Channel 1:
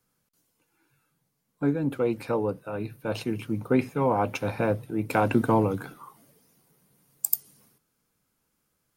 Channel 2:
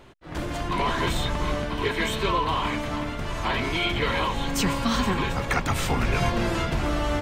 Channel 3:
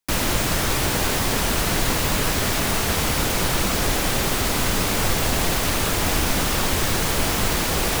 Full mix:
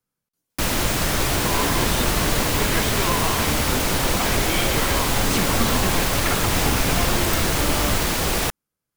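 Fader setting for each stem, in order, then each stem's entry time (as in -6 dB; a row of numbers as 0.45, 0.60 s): -9.0, -1.5, 0.0 dB; 0.00, 0.75, 0.50 s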